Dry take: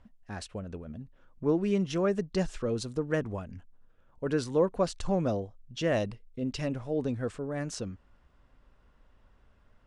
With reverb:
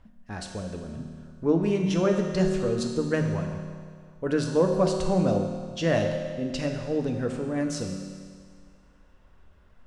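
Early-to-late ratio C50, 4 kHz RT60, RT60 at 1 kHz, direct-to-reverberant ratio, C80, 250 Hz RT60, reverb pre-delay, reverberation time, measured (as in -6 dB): 4.0 dB, 1.9 s, 1.9 s, 2.0 dB, 5.5 dB, 1.9 s, 6 ms, 1.9 s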